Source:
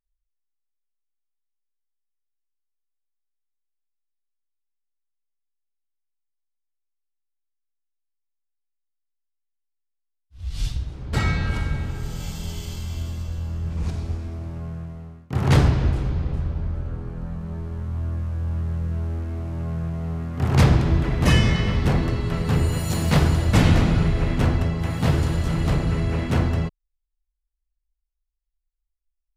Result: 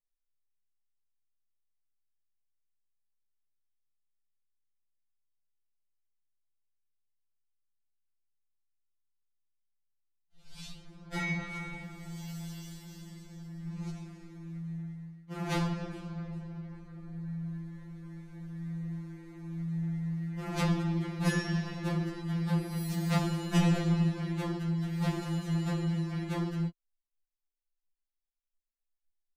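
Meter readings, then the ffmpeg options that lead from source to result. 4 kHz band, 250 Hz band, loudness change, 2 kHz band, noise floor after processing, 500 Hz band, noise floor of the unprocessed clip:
-11.5 dB, -7.0 dB, -10.5 dB, -9.5 dB, -85 dBFS, -11.5 dB, -79 dBFS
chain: -af "afftfilt=real='re*2.83*eq(mod(b,8),0)':imag='im*2.83*eq(mod(b,8),0)':win_size=2048:overlap=0.75,volume=0.422"

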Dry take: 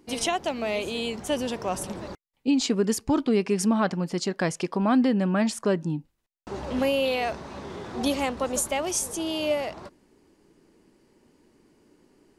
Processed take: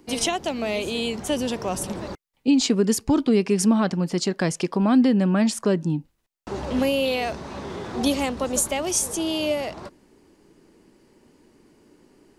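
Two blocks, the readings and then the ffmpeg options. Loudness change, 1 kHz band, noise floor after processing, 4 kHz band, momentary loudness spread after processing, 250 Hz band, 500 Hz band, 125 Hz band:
+3.0 dB, +0.5 dB, -67 dBFS, +3.5 dB, 12 LU, +4.0 dB, +2.0 dB, +4.5 dB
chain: -filter_complex "[0:a]acrossover=split=420|3000[s0][s1][s2];[s1]acompressor=threshold=0.0112:ratio=1.5[s3];[s0][s3][s2]amix=inputs=3:normalize=0,volume=1.68"

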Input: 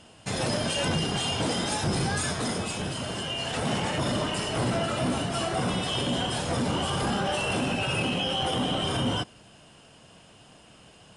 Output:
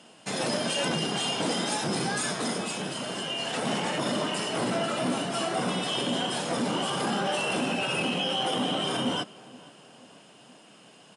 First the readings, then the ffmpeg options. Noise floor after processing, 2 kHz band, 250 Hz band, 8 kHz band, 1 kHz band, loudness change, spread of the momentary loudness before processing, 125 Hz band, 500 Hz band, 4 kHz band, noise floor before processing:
-54 dBFS, 0.0 dB, -0.5 dB, 0.0 dB, 0.0 dB, -0.5 dB, 4 LU, -7.0 dB, 0.0 dB, 0.0 dB, -54 dBFS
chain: -filter_complex "[0:a]highpass=f=170:w=0.5412,highpass=f=170:w=1.3066,asplit=2[s0][s1];[s1]adelay=476,lowpass=f=2200:p=1,volume=0.0891,asplit=2[s2][s3];[s3]adelay=476,lowpass=f=2200:p=1,volume=0.54,asplit=2[s4][s5];[s5]adelay=476,lowpass=f=2200:p=1,volume=0.54,asplit=2[s6][s7];[s7]adelay=476,lowpass=f=2200:p=1,volume=0.54[s8];[s2][s4][s6][s8]amix=inputs=4:normalize=0[s9];[s0][s9]amix=inputs=2:normalize=0"

